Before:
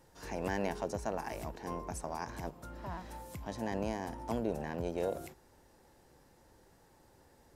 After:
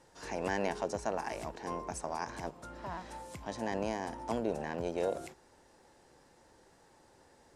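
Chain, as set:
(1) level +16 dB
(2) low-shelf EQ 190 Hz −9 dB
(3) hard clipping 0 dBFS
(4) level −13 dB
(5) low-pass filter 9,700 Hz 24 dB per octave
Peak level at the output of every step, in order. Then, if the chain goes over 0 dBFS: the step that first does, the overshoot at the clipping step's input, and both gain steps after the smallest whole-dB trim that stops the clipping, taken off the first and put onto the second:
−3.5, −5.0, −5.0, −18.0, −18.0 dBFS
no step passes full scale

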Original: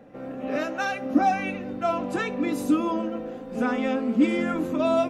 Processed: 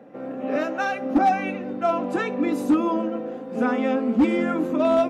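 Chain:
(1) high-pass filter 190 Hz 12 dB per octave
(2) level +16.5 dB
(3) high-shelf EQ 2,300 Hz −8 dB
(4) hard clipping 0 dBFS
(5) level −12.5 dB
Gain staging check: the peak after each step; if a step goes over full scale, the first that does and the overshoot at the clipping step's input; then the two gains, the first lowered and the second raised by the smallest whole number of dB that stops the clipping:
−9.5, +7.0, +7.0, 0.0, −12.5 dBFS
step 2, 7.0 dB
step 2 +9.5 dB, step 5 −5.5 dB

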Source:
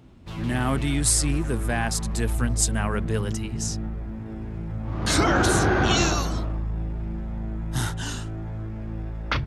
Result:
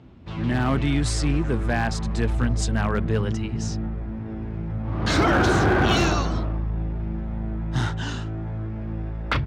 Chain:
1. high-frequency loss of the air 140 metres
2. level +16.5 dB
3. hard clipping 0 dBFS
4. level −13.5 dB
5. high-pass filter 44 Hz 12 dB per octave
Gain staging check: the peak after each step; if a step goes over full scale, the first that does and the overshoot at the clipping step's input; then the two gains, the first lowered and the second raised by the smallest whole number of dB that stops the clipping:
−9.5, +7.0, 0.0, −13.5, −9.0 dBFS
step 2, 7.0 dB
step 2 +9.5 dB, step 4 −6.5 dB

